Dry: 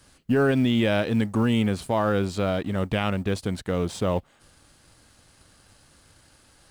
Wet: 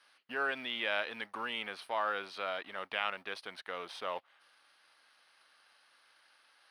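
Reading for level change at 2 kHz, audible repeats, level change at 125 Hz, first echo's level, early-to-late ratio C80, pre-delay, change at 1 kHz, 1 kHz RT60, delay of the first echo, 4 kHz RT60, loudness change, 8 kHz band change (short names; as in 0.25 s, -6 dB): -3.5 dB, none, under -35 dB, none, none, none, -6.5 dB, none, none, none, -12.5 dB, -18.0 dB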